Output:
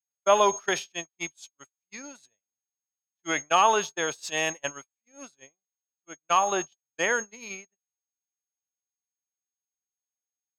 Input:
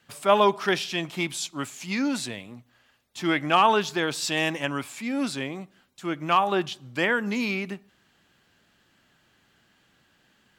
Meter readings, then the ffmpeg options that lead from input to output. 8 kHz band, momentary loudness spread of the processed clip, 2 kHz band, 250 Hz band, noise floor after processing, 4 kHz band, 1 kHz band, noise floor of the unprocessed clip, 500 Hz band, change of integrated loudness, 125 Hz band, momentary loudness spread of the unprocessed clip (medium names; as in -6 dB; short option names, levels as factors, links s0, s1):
+5.0 dB, 20 LU, -3.0 dB, -12.5 dB, under -85 dBFS, -4.0 dB, -1.5 dB, -65 dBFS, -2.0 dB, -0.5 dB, -13.5 dB, 15 LU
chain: -af "lowshelf=f=370:t=q:w=1.5:g=-6.5,aeval=exprs='val(0)+0.0282*sin(2*PI*6500*n/s)':c=same,agate=range=0.00112:threshold=0.0501:ratio=16:detection=peak,volume=0.794"